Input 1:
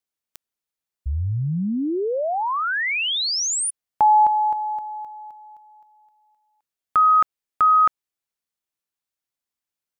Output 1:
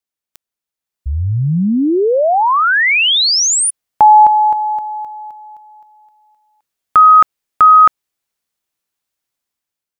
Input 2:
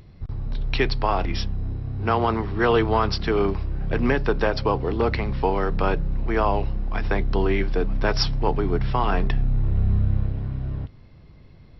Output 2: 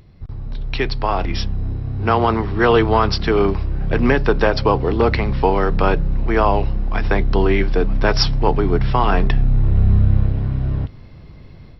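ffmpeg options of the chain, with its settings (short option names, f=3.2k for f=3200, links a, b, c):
-af "dynaudnorm=f=780:g=3:m=11.5dB"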